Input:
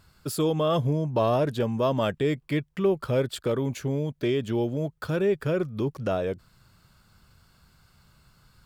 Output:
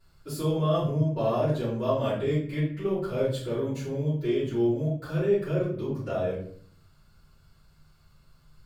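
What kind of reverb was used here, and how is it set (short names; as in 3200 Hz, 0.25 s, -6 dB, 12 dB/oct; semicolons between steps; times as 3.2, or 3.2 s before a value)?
shoebox room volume 68 m³, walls mixed, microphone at 3.1 m; gain -16.5 dB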